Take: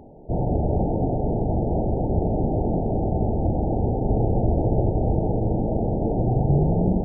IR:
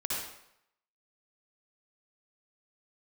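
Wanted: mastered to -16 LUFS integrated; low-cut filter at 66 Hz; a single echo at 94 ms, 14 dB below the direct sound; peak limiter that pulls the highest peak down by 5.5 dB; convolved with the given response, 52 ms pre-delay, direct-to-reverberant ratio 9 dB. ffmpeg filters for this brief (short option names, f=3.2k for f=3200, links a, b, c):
-filter_complex "[0:a]highpass=66,alimiter=limit=-15dB:level=0:latency=1,aecho=1:1:94:0.2,asplit=2[a][b];[1:a]atrim=start_sample=2205,adelay=52[c];[b][c]afir=irnorm=-1:irlink=0,volume=-14.5dB[d];[a][d]amix=inputs=2:normalize=0,volume=8.5dB"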